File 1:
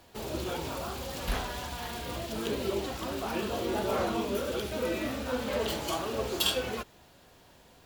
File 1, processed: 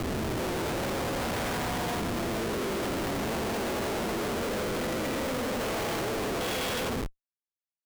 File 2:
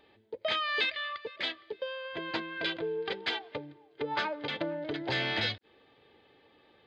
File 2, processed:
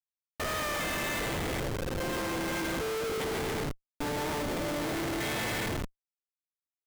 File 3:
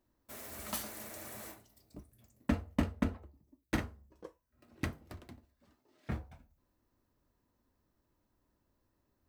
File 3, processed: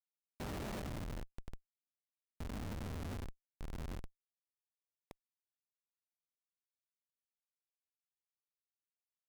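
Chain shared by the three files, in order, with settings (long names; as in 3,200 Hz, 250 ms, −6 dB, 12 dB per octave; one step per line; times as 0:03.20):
spectrum averaged block by block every 400 ms
high-pass filter 110 Hz 12 dB per octave
parametric band 15,000 Hz +5.5 dB 0.22 octaves
echo with a time of its own for lows and highs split 780 Hz, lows 156 ms, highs 81 ms, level −7 dB
transient designer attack +2 dB, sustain +6 dB
dynamic equaliser 2,100 Hz, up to +7 dB, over −60 dBFS, Q 4
in parallel at +0.5 dB: brickwall limiter −30.5 dBFS
on the sum: comparator with hysteresis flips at −31 dBFS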